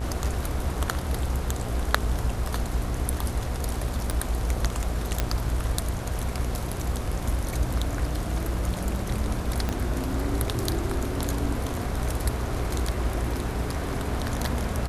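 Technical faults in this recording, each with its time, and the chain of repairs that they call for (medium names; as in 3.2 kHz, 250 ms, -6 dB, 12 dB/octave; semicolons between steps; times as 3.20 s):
buzz 60 Hz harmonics 27 -32 dBFS
4.11 s: pop
5.20 s: pop -9 dBFS
9.69 s: pop -13 dBFS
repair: de-click; de-hum 60 Hz, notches 27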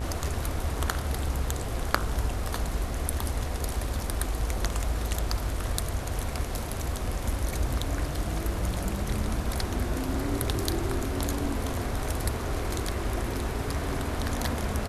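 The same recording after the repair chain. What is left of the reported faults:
4.11 s: pop
9.69 s: pop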